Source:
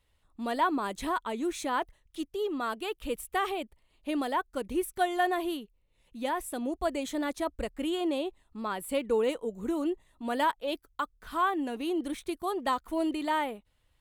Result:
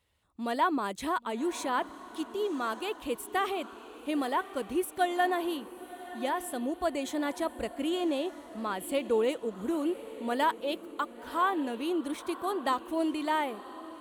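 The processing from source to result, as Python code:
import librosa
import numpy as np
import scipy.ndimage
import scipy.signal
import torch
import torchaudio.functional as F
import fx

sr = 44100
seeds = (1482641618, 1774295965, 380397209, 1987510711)

p1 = scipy.signal.sosfilt(scipy.signal.butter(2, 77.0, 'highpass', fs=sr, output='sos'), x)
y = p1 + fx.echo_diffused(p1, sr, ms=1034, feedback_pct=47, wet_db=-14.5, dry=0)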